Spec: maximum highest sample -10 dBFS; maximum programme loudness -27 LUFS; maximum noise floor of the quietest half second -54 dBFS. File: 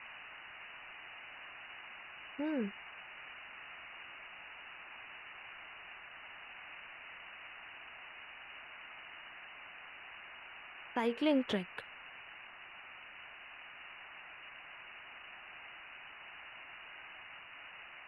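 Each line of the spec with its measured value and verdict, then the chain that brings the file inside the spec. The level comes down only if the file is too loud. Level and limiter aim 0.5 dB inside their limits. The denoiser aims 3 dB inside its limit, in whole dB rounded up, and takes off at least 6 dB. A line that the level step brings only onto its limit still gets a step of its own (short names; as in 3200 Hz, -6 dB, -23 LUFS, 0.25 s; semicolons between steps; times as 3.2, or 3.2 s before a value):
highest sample -21.5 dBFS: OK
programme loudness -44.5 LUFS: OK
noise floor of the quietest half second -52 dBFS: fail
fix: denoiser 6 dB, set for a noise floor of -52 dBFS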